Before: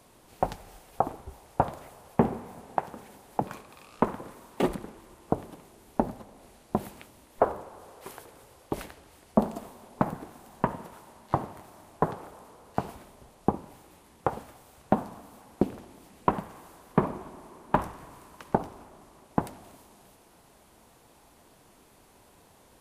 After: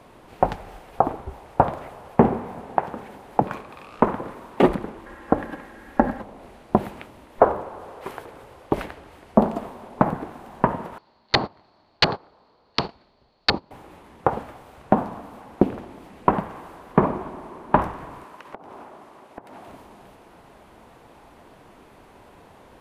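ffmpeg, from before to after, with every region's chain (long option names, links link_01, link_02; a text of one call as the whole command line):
ffmpeg -i in.wav -filter_complex "[0:a]asettb=1/sr,asplit=3[link_01][link_02][link_03];[link_01]atrim=end=5.064[link_04];[link_02]atrim=start=5.06:end=6.21,asetpts=PTS-STARTPTS,afade=type=in:duration=0.004:curve=qsin,afade=type=out:start_time=1.146:duration=0.004:curve=qsin,equalizer=frequency=1700:width_type=o:width=0.41:gain=15,aecho=1:1:3.7:0.5,atrim=end_sample=50715[link_05];[link_03]atrim=start=6.206[link_06];[link_04][link_05]acrossfade=duration=0.004:curve1=hsin:curve2=qsin[link_07];[link_07][link_06]acrossfade=duration=0.004:curve1=qsin:curve2=hsin,asettb=1/sr,asplit=3[link_08][link_09][link_10];[link_08]atrim=end=10.984[link_11];[link_09]atrim=start=10.98:end=13.71,asetpts=PTS-STARTPTS,afade=type=in:duration=0.004:curve=qsin,afade=type=out:start_time=2.726:duration=0.004:curve=qsin,aeval=exprs='(mod(8.91*val(0)+1,2)-1)/8.91':channel_layout=same,lowpass=frequency=4400:width_type=q:width=13,agate=range=-18dB:threshold=-39dB:ratio=16:release=100:detection=peak[link_12];[link_10]atrim=start=13.706[link_13];[link_11][link_12]acrossfade=duration=0.004:curve1=hsin:curve2=qsin[link_14];[link_14][link_13]acrossfade=duration=0.004:curve1=qsin:curve2=hsin,asettb=1/sr,asplit=3[link_15][link_16][link_17];[link_15]atrim=end=18.244[link_18];[link_16]atrim=start=18.24:end=19.68,asetpts=PTS-STARTPTS,afade=type=in:duration=0.004:curve=qsin,afade=type=out:start_time=1.436:duration=0.004:curve=qsin,highpass=frequency=340:poles=1,acompressor=threshold=-45dB:ratio=12:attack=3.2:release=140:knee=1:detection=peak[link_19];[link_17]atrim=start=19.676[link_20];[link_18][link_19]acrossfade=duration=0.004:curve1=hsin:curve2=qsin[link_21];[link_21][link_20]acrossfade=duration=0.004:curve1=qsin:curve2=hsin,bass=frequency=250:gain=-2,treble=frequency=4000:gain=-15,alimiter=level_in=11dB:limit=-1dB:release=50:level=0:latency=1,volume=-1dB" out.wav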